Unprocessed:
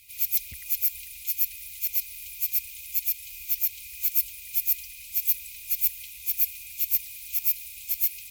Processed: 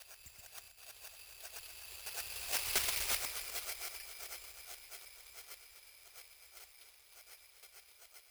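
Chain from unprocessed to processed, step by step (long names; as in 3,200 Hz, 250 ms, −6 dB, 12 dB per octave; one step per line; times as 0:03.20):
slices reordered back to front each 243 ms, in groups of 4
source passing by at 0:02.82, 20 m/s, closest 3.8 metres
hard clipping −20.5 dBFS, distortion −13 dB
linear-phase brick-wall low-pass 7,000 Hz
delay that swaps between a low-pass and a high-pass 125 ms, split 2,400 Hz, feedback 52%, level −4 dB
on a send at −15 dB: convolution reverb RT60 1.9 s, pre-delay 5 ms
on the sum: bad sample-rate conversion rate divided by 6×, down none, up zero stuff
highs frequency-modulated by the lows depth 0.73 ms
level +5.5 dB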